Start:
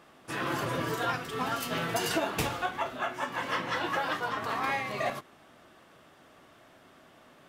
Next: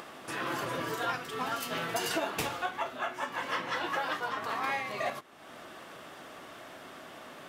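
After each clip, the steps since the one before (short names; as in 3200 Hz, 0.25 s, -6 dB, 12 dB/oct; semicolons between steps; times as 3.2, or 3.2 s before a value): low shelf 170 Hz -10 dB; upward compressor, threshold -34 dBFS; gain -1.5 dB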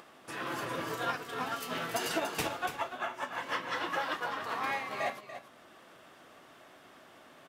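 echo 0.288 s -7 dB; upward expander 1.5:1, over -46 dBFS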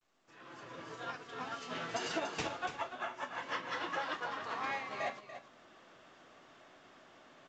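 opening faded in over 1.93 s; gain -4 dB; µ-law 128 kbps 16000 Hz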